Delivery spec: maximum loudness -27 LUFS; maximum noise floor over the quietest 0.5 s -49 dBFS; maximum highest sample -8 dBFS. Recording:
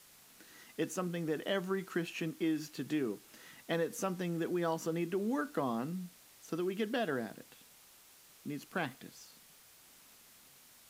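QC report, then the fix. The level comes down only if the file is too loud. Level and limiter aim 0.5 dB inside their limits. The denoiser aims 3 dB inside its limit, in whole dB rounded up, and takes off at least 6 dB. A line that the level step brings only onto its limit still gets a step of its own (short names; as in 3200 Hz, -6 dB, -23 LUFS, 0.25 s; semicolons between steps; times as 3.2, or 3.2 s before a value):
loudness -37.0 LUFS: OK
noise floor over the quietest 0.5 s -61 dBFS: OK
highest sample -21.0 dBFS: OK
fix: none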